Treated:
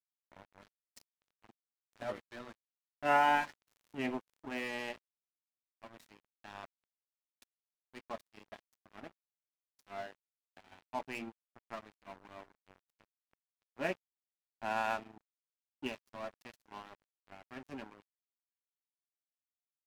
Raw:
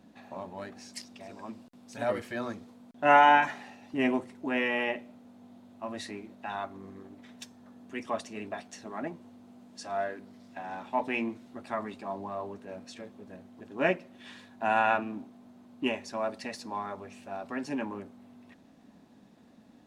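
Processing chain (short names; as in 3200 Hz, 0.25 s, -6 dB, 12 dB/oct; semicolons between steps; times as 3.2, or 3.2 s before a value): crossover distortion -36 dBFS; 3.67–4.51 crackle 80/s -> 27/s -46 dBFS; gain -7.5 dB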